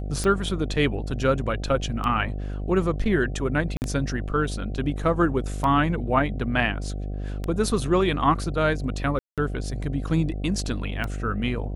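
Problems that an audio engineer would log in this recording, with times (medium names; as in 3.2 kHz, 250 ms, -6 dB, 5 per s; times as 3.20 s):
buzz 50 Hz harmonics 15 -30 dBFS
tick 33 1/3 rpm -15 dBFS
3.77–3.82 s: dropout 49 ms
9.19–9.38 s: dropout 187 ms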